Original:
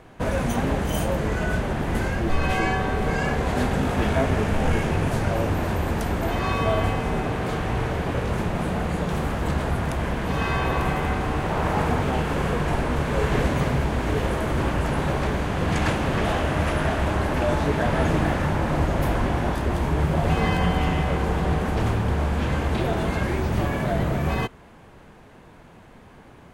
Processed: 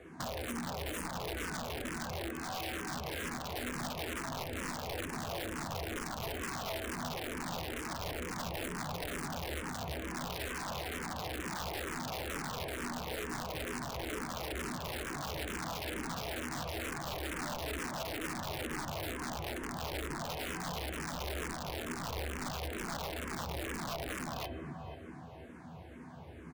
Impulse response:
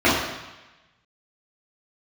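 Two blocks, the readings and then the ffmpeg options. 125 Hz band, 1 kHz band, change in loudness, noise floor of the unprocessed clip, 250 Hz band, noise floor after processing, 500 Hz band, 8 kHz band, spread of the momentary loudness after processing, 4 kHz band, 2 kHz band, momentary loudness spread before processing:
−20.5 dB, −13.5 dB, −14.5 dB, −48 dBFS, −16.5 dB, −49 dBFS, −15.5 dB, −3.0 dB, 1 LU, −6.0 dB, −11.5 dB, 4 LU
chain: -filter_complex "[0:a]asplit=2[link_01][link_02];[1:a]atrim=start_sample=2205,highshelf=frequency=11000:gain=7.5[link_03];[link_02][link_03]afir=irnorm=-1:irlink=0,volume=-30dB[link_04];[link_01][link_04]amix=inputs=2:normalize=0,acrossover=split=250[link_05][link_06];[link_05]acompressor=threshold=-30dB:ratio=5[link_07];[link_07][link_06]amix=inputs=2:normalize=0,lowshelf=frequency=410:gain=6,asplit=2[link_08][link_09];[link_09]adelay=12,volume=-7dB[link_10];[link_08][link_10]amix=inputs=2:normalize=0,acompressor=threshold=-27dB:ratio=16,highpass=frequency=65:width=0.5412,highpass=frequency=65:width=1.3066,asplit=2[link_11][link_12];[link_12]adelay=483,lowpass=frequency=3000:poles=1,volume=-8dB,asplit=2[link_13][link_14];[link_14]adelay=483,lowpass=frequency=3000:poles=1,volume=0.37,asplit=2[link_15][link_16];[link_16]adelay=483,lowpass=frequency=3000:poles=1,volume=0.37,asplit=2[link_17][link_18];[link_18]adelay=483,lowpass=frequency=3000:poles=1,volume=0.37[link_19];[link_11][link_13][link_15][link_17][link_19]amix=inputs=5:normalize=0,aeval=exprs='(mod(16.8*val(0)+1,2)-1)/16.8':channel_layout=same,asplit=2[link_20][link_21];[link_21]afreqshift=-2.2[link_22];[link_20][link_22]amix=inputs=2:normalize=1,volume=-5dB"

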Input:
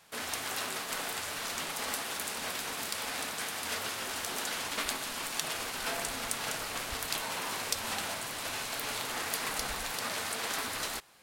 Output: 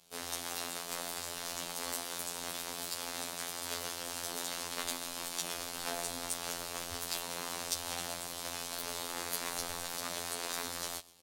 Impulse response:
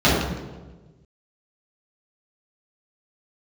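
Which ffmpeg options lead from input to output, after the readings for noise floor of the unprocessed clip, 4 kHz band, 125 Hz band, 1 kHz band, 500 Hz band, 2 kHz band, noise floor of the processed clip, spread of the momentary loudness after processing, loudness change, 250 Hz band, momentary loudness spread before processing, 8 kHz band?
−39 dBFS, −3.5 dB, −3.0 dB, −4.5 dB, −2.5 dB, −7.5 dB, −44 dBFS, 3 LU, −3.5 dB, −2.5 dB, 2 LU, −1.5 dB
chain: -filter_complex "[0:a]aecho=1:1:125|250|375:0.0891|0.0392|0.0173,afftfilt=real='hypot(re,im)*cos(PI*b)':imag='0':win_size=2048:overlap=0.75,acrossover=split=760|2500[link_01][link_02][link_03];[link_02]adynamicsmooth=sensitivity=4:basefreq=1100[link_04];[link_03]aecho=1:1:7.3:0.69[link_05];[link_01][link_04][link_05]amix=inputs=3:normalize=0"

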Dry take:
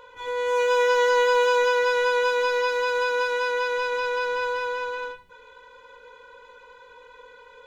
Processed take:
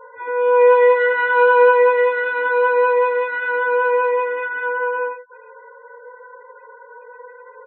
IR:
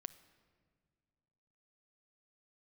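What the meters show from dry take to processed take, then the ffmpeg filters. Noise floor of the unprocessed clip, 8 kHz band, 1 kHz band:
−50 dBFS, can't be measured, +6.5 dB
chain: -filter_complex "[0:a]highpass=120,equalizer=frequency=150:width_type=q:width=4:gain=-9,equalizer=frequency=240:width_type=q:width=4:gain=-7,equalizer=frequency=1300:width_type=q:width=4:gain=-5,lowpass=frequency=2000:width=0.5412,lowpass=frequency=2000:width=1.3066,aecho=1:1:90:0.224,asplit=2[link_01][link_02];[1:a]atrim=start_sample=2205,afade=type=out:start_time=0.36:duration=0.01,atrim=end_sample=16317[link_03];[link_02][link_03]afir=irnorm=-1:irlink=0,volume=13.5dB[link_04];[link_01][link_04]amix=inputs=2:normalize=0,afftfilt=real='re*gte(hypot(re,im),0.0178)':imag='im*gte(hypot(re,im),0.0178)':win_size=1024:overlap=0.75,asplit=2[link_05][link_06];[link_06]adelay=9.2,afreqshift=0.91[link_07];[link_05][link_07]amix=inputs=2:normalize=1"

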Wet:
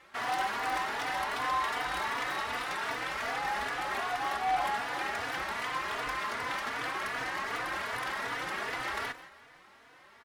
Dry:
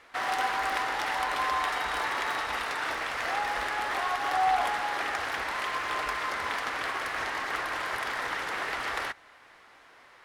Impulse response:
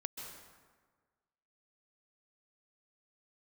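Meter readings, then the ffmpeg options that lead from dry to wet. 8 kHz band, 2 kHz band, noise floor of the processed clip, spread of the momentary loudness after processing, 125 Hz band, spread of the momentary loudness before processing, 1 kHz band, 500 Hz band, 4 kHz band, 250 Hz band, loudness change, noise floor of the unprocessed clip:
−2.5 dB, −3.0 dB, −57 dBFS, 4 LU, +1.0 dB, 4 LU, −3.0 dB, −2.5 dB, −3.0 dB, 0.0 dB, −3.0 dB, −56 dBFS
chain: -filter_complex "[0:a]equalizer=frequency=170:width=1:gain=6.5,asoftclip=type=tanh:threshold=-21.5dB,aecho=1:1:172|344|516:0.126|0.0516|0.0212,asplit=2[link_01][link_02];[1:a]atrim=start_sample=2205,afade=type=out:start_time=0.2:duration=0.01,atrim=end_sample=9261,highshelf=frequency=11000:gain=8[link_03];[link_02][link_03]afir=irnorm=-1:irlink=0,volume=-4dB[link_04];[link_01][link_04]amix=inputs=2:normalize=0,asplit=2[link_05][link_06];[link_06]adelay=3.4,afreqshift=2.6[link_07];[link_05][link_07]amix=inputs=2:normalize=1,volume=-2.5dB"

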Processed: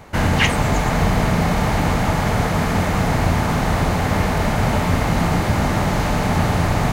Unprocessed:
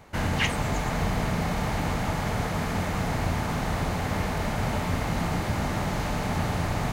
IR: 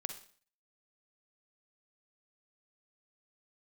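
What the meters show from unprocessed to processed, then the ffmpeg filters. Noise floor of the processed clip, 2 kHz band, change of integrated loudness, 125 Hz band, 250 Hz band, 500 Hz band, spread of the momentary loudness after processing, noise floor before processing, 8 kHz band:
−21 dBFS, +8.5 dB, +9.0 dB, +9.5 dB, +9.5 dB, +9.5 dB, 2 LU, −30 dBFS, +8.0 dB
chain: -filter_complex "[0:a]asplit=2[link_01][link_02];[1:a]atrim=start_sample=2205,lowpass=2600[link_03];[link_02][link_03]afir=irnorm=-1:irlink=0,volume=-14.5dB[link_04];[link_01][link_04]amix=inputs=2:normalize=0,volume=8dB"

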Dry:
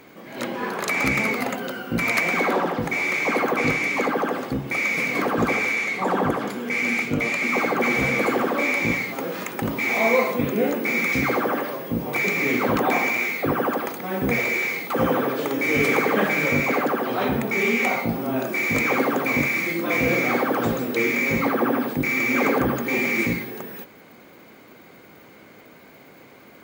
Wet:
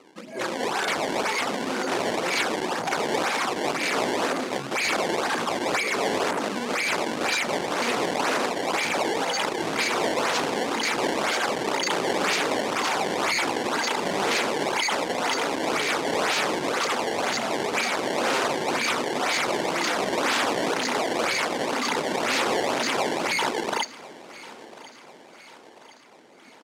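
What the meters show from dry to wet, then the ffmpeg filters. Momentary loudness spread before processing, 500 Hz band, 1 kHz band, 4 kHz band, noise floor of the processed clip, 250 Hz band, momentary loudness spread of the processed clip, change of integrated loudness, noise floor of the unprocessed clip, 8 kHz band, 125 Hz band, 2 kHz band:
7 LU, −2.0 dB, +1.0 dB, +8.0 dB, −48 dBFS, −6.5 dB, 3 LU, −3.0 dB, −48 dBFS, +6.0 dB, −10.5 dB, −4.5 dB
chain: -af "afftdn=noise_reduction=18:noise_floor=-31,acompressor=threshold=-24dB:ratio=8,aphaser=in_gain=1:out_gain=1:delay=1.4:decay=0.65:speed=0.49:type=sinusoidal,aeval=exprs='0.376*(cos(1*acos(clip(val(0)/0.376,-1,1)))-cos(1*PI/2))+0.0237*(cos(5*acos(clip(val(0)/0.376,-1,1)))-cos(5*PI/2))+0.0596*(cos(8*acos(clip(val(0)/0.376,-1,1)))-cos(8*PI/2))':channel_layout=same,flanger=delay=0.4:depth=1.7:regen=-43:speed=1.1:shape=triangular,crystalizer=i=1:c=0,acrusher=samples=20:mix=1:aa=0.000001:lfo=1:lforange=32:lforate=2,aeval=exprs='0.0562*(abs(mod(val(0)/0.0562+3,4)-2)-1)':channel_layout=same,highpass=320,lowpass=8000,aecho=1:1:1044|2088|3132|4176:0.112|0.0606|0.0327|0.0177,volume=7.5dB"

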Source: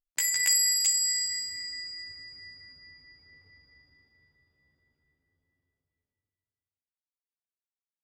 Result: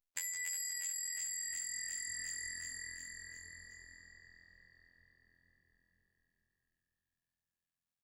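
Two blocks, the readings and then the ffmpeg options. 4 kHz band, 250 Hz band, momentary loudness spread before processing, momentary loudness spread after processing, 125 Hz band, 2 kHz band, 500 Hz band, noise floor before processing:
−17.5 dB, −4.0 dB, 20 LU, 17 LU, −2.5 dB, −7.0 dB, can't be measured, below −85 dBFS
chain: -filter_complex "[0:a]afftfilt=real='hypot(re,im)*cos(PI*b)':imag='0':win_size=2048:overlap=0.75,asplit=9[link_01][link_02][link_03][link_04][link_05][link_06][link_07][link_08][link_09];[link_02]adelay=358,afreqshift=-42,volume=-3.5dB[link_10];[link_03]adelay=716,afreqshift=-84,volume=-8.2dB[link_11];[link_04]adelay=1074,afreqshift=-126,volume=-13dB[link_12];[link_05]adelay=1432,afreqshift=-168,volume=-17.7dB[link_13];[link_06]adelay=1790,afreqshift=-210,volume=-22.4dB[link_14];[link_07]adelay=2148,afreqshift=-252,volume=-27.2dB[link_15];[link_08]adelay=2506,afreqshift=-294,volume=-31.9dB[link_16];[link_09]adelay=2864,afreqshift=-336,volume=-36.6dB[link_17];[link_01][link_10][link_11][link_12][link_13][link_14][link_15][link_16][link_17]amix=inputs=9:normalize=0,acompressor=threshold=-39dB:ratio=8,volume=1dB"

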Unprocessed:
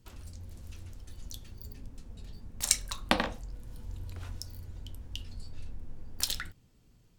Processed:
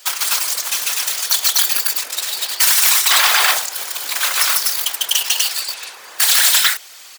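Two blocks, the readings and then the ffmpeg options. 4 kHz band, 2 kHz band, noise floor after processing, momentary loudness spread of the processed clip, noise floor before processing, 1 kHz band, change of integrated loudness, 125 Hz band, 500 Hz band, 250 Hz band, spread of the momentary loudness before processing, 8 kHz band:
+23.5 dB, +23.0 dB, −39 dBFS, 11 LU, −63 dBFS, +18.0 dB, +21.0 dB, below −20 dB, +8.0 dB, can't be measured, 20 LU, +21.5 dB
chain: -filter_complex "[0:a]aeval=exprs='abs(val(0))':channel_layout=same,bandreject=frequency=2800:width=24,asplit=2[link_01][link_02];[link_02]aecho=0:1:148.7|247.8:0.891|1[link_03];[link_01][link_03]amix=inputs=2:normalize=0,acompressor=threshold=-31dB:ratio=6,asplit=2[link_04][link_05];[link_05]highpass=frequency=720:poles=1,volume=31dB,asoftclip=type=tanh:threshold=-10.5dB[link_06];[link_04][link_06]amix=inputs=2:normalize=0,lowpass=frequency=1200:poles=1,volume=-6dB,highpass=730,asplit=2[link_07][link_08];[link_08]acrusher=bits=5:mix=0:aa=0.000001,volume=-3.5dB[link_09];[link_07][link_09]amix=inputs=2:normalize=0,aderivative,afftfilt=real='hypot(re,im)*cos(2*PI*random(0))':imag='hypot(re,im)*sin(2*PI*random(1))':win_size=512:overlap=0.75,alimiter=level_in=31dB:limit=-1dB:release=50:level=0:latency=1,volume=-1dB"

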